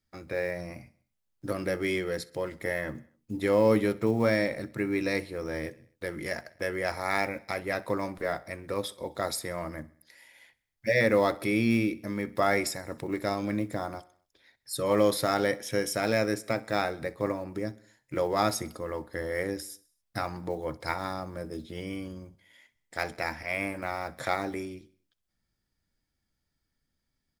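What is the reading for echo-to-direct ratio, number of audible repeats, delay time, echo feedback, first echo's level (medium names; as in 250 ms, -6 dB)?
-20.5 dB, 3, 64 ms, 58%, -22.0 dB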